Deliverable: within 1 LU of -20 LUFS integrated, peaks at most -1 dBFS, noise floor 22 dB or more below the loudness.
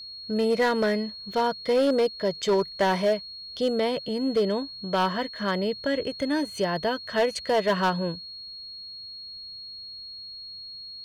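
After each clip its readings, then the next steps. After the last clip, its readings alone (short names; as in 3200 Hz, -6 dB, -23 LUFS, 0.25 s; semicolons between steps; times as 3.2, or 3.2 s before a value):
clipped 1.1%; flat tops at -17.0 dBFS; steady tone 4300 Hz; tone level -38 dBFS; loudness -26.0 LUFS; peak -17.0 dBFS; loudness target -20.0 LUFS
-> clip repair -17 dBFS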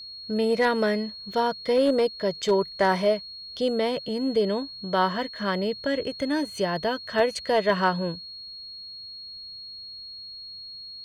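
clipped 0.0%; steady tone 4300 Hz; tone level -38 dBFS
-> notch 4300 Hz, Q 30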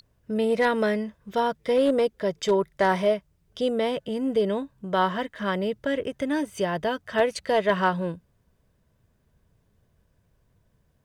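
steady tone none; loudness -25.5 LUFS; peak -8.5 dBFS; loudness target -20.0 LUFS
-> gain +5.5 dB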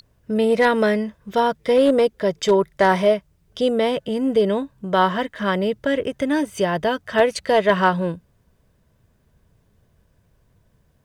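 loudness -20.0 LUFS; peak -3.0 dBFS; noise floor -62 dBFS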